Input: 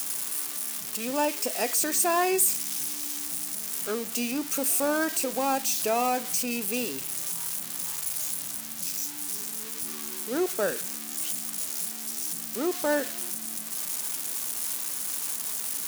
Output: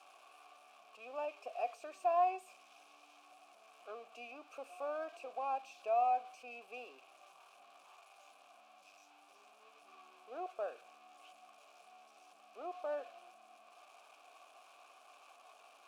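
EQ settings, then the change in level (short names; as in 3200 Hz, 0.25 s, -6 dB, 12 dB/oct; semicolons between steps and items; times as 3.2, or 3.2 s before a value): vowel filter a; HPF 360 Hz 12 dB/oct; LPF 3200 Hz 6 dB/oct; -2.0 dB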